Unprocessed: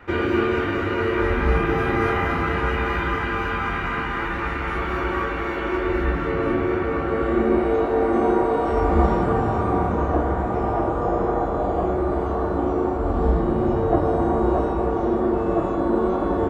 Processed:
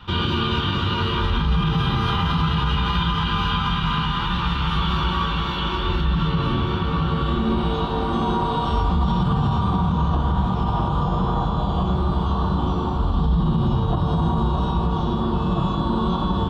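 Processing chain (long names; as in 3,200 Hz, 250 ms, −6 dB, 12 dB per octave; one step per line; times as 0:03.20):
drawn EQ curve 110 Hz 0 dB, 160 Hz +9 dB, 310 Hz −14 dB, 680 Hz −15 dB, 980 Hz 0 dB, 2,100 Hz −16 dB, 3,300 Hz +14 dB, 7,200 Hz −6 dB
brickwall limiter −18.5 dBFS, peak gain reduction 10 dB
level +6.5 dB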